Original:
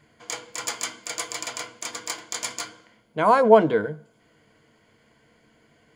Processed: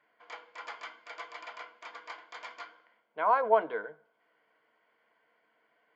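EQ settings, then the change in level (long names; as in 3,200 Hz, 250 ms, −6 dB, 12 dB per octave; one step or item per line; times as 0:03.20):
high-pass filter 880 Hz 12 dB per octave
high-frequency loss of the air 79 metres
head-to-tape spacing loss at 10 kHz 40 dB
0.0 dB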